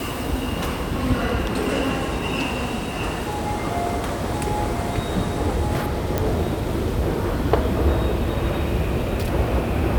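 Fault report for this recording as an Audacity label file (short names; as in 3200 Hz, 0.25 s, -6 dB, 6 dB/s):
6.180000	6.180000	pop -7 dBFS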